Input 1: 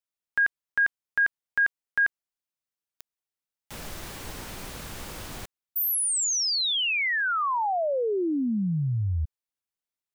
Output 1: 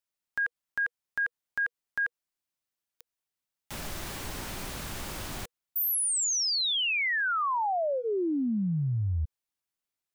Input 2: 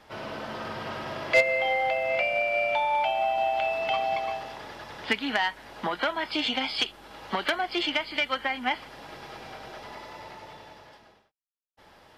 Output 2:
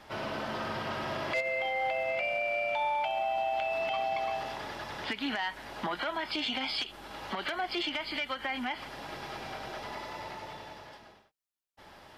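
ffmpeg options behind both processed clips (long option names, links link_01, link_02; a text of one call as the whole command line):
ffmpeg -i in.wav -af "acompressor=threshold=-27dB:ratio=10:attack=0.18:release=103:knee=6:detection=rms,bandreject=frequency=480:width=12,volume=2dB" out.wav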